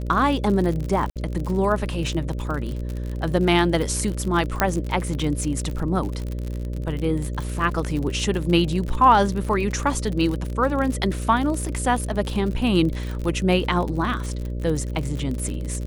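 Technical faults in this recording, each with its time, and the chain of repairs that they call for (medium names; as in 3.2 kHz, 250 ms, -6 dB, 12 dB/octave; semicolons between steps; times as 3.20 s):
buzz 60 Hz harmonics 10 -28 dBFS
crackle 52 per s -27 dBFS
1.10–1.16 s: dropout 57 ms
4.60 s: pop -4 dBFS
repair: de-click; de-hum 60 Hz, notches 10; interpolate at 1.10 s, 57 ms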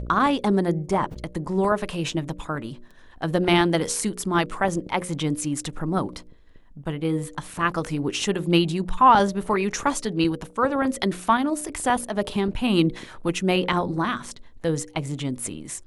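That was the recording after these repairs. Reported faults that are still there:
nothing left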